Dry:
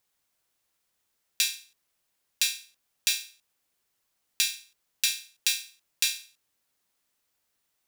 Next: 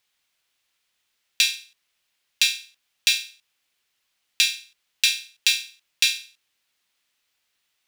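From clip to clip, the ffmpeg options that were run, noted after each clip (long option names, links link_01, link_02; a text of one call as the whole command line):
ffmpeg -i in.wav -af "equalizer=frequency=2900:width=0.59:gain=12,volume=-2.5dB" out.wav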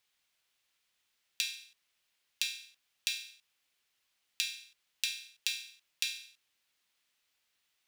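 ffmpeg -i in.wav -af "acompressor=threshold=-28dB:ratio=4,volume=-4.5dB" out.wav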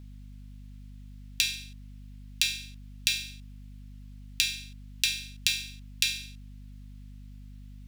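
ffmpeg -i in.wav -af "aeval=exprs='val(0)+0.00251*(sin(2*PI*50*n/s)+sin(2*PI*2*50*n/s)/2+sin(2*PI*3*50*n/s)/3+sin(2*PI*4*50*n/s)/4+sin(2*PI*5*50*n/s)/5)':channel_layout=same,volume=7.5dB" out.wav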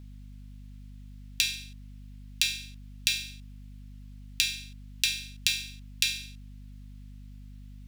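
ffmpeg -i in.wav -af anull out.wav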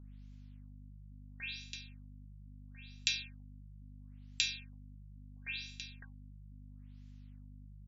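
ffmpeg -i in.wav -af "aecho=1:1:332:0.2,afftfilt=real='re*lt(b*sr/1024,210*pow(7600/210,0.5+0.5*sin(2*PI*0.74*pts/sr)))':imag='im*lt(b*sr/1024,210*pow(7600/210,0.5+0.5*sin(2*PI*0.74*pts/sr)))':win_size=1024:overlap=0.75,volume=-6dB" out.wav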